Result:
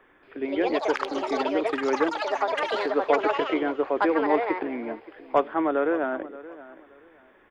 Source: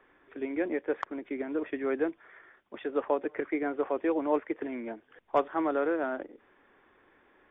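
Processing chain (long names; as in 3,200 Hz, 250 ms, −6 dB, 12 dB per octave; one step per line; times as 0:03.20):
on a send: repeating echo 575 ms, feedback 24%, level −17.5 dB
on the sum: delay with pitch and tempo change per echo 228 ms, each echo +6 semitones, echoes 3
level +4.5 dB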